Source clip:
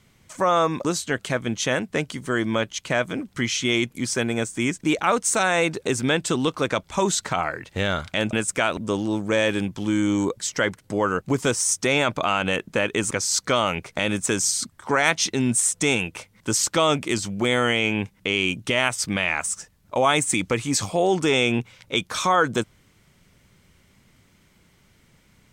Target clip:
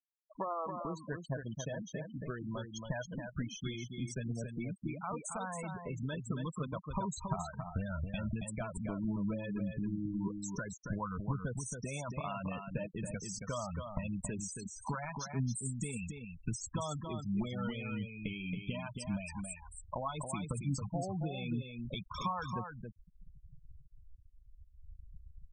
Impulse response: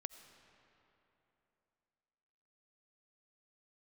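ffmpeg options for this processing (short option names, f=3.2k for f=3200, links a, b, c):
-filter_complex "[0:a]acompressor=threshold=-33dB:ratio=4,equalizer=f=100:t=o:w=0.33:g=-8,equalizer=f=200:t=o:w=0.33:g=4,equalizer=f=630:t=o:w=0.33:g=4,equalizer=f=1k:t=o:w=0.33:g=6,equalizer=f=2k:t=o:w=0.33:g=-5,flanger=delay=0.9:depth=6.5:regen=63:speed=0.36:shape=sinusoidal,asubboost=boost=8.5:cutoff=120,afftfilt=real='re*gte(hypot(re,im),0.0282)':imag='im*gte(hypot(re,im),0.0282)':win_size=1024:overlap=0.75,asplit=2[a][b];[b]aecho=0:1:275:0.501[c];[a][c]amix=inputs=2:normalize=0,volume=-1.5dB"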